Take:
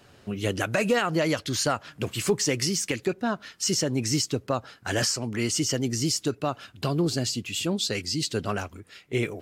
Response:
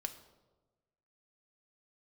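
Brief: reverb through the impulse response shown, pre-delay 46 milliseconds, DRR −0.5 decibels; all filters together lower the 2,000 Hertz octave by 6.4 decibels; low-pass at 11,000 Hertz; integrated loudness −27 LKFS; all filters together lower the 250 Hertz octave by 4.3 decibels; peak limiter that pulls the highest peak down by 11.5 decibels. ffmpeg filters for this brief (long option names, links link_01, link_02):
-filter_complex "[0:a]lowpass=11000,equalizer=frequency=250:width_type=o:gain=-6,equalizer=frequency=2000:width_type=o:gain=-8.5,alimiter=level_in=1.5dB:limit=-24dB:level=0:latency=1,volume=-1.5dB,asplit=2[link_01][link_02];[1:a]atrim=start_sample=2205,adelay=46[link_03];[link_02][link_03]afir=irnorm=-1:irlink=0,volume=2dB[link_04];[link_01][link_04]amix=inputs=2:normalize=0,volume=5dB"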